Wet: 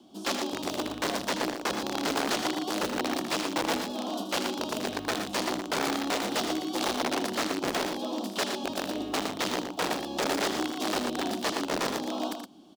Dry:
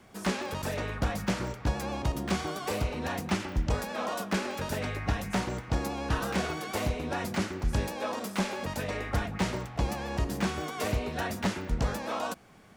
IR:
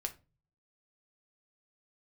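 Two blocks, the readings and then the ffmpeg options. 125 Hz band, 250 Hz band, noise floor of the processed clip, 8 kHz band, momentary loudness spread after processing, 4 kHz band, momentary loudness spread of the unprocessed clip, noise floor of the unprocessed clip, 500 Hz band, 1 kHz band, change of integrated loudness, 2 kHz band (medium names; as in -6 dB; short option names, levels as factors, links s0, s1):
-13.5 dB, +2.0 dB, -40 dBFS, +5.5 dB, 4 LU, +7.5 dB, 3 LU, -45 dBFS, +2.5 dB, +3.0 dB, +2.0 dB, +2.0 dB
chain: -filter_complex "[0:a]acrusher=bits=6:mode=log:mix=0:aa=0.000001,firequalizer=gain_entry='entry(170,0);entry(300,11);entry(450,-11);entry(690,-3);entry(2000,-28);entry(3100,1);entry(6900,-5);entry(13000,1)':delay=0.05:min_phase=1,aeval=exprs='(mod(16.8*val(0)+1,2)-1)/16.8':c=same,acrossover=split=230 7600:gain=0.0794 1 0.251[s0][s1][s2];[s0][s1][s2]amix=inputs=3:normalize=0,asplit=2[s3][s4];[s4]aecho=0:1:78.72|116.6:0.316|0.447[s5];[s3][s5]amix=inputs=2:normalize=0,volume=1.5"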